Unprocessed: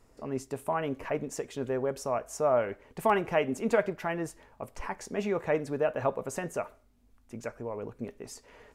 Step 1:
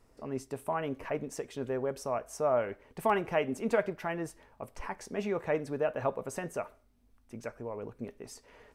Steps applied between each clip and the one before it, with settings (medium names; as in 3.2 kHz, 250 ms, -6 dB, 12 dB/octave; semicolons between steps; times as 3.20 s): band-stop 7 kHz, Q 12; trim -2.5 dB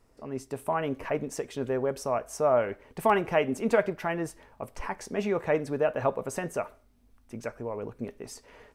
level rider gain up to 4.5 dB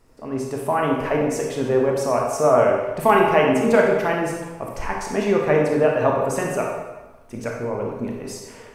reverberation RT60 1.2 s, pre-delay 25 ms, DRR -0.5 dB; trim +6 dB